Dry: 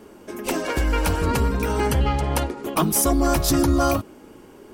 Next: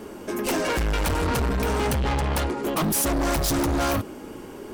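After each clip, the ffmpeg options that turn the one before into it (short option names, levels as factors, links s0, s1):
-af "asoftclip=type=tanh:threshold=0.0376,volume=2.24"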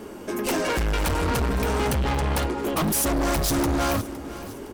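-af "aecho=1:1:512|1024|1536|2048:0.158|0.0745|0.035|0.0165"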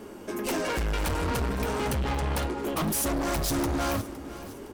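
-af "flanger=delay=7.4:depth=7.4:regen=-80:speed=0.57:shape=triangular"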